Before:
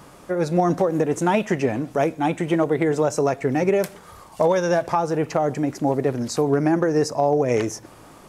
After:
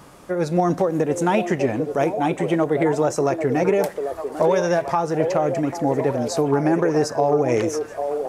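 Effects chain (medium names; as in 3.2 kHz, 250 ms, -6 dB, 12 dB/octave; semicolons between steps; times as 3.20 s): repeats whose band climbs or falls 794 ms, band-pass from 500 Hz, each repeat 0.7 oct, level -4.5 dB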